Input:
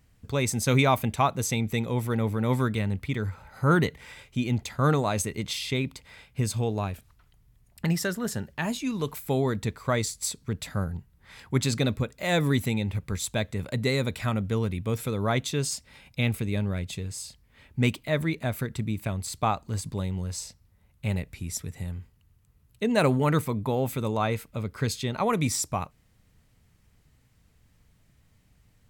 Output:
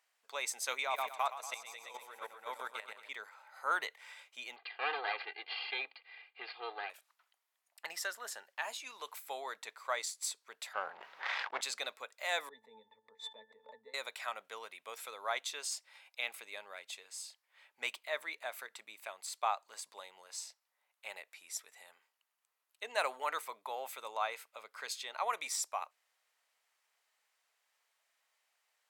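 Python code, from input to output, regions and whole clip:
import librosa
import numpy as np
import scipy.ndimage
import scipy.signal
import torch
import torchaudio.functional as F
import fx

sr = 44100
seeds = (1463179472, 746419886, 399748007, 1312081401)

y = fx.chain(x, sr, fx.echo_feedback(ms=117, feedback_pct=55, wet_db=-5),
    fx.level_steps(step_db=12), at=(0.75, 3.09))
y = fx.chain(y, sr, fx.lower_of_two(delay_ms=0.41),
    fx.steep_lowpass(hz=4500.0, slope=96),
    fx.comb(ms=2.5, depth=0.96), at=(4.56, 6.9))
y = fx.chain(y, sr, fx.leveller(passes=3),
    fx.air_absorb(metres=250.0),
    fx.sustainer(db_per_s=24.0), at=(10.73, 11.61))
y = fx.chain(y, sr, fx.tilt_shelf(db=7.0, hz=830.0),
    fx.octave_resonator(note='A', decay_s=0.14),
    fx.pre_swell(db_per_s=69.0), at=(12.49, 13.94))
y = scipy.signal.sosfilt(scipy.signal.butter(4, 680.0, 'highpass', fs=sr, output='sos'), y)
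y = fx.high_shelf(y, sr, hz=10000.0, db=-5.0)
y = F.gain(torch.from_numpy(y), -6.0).numpy()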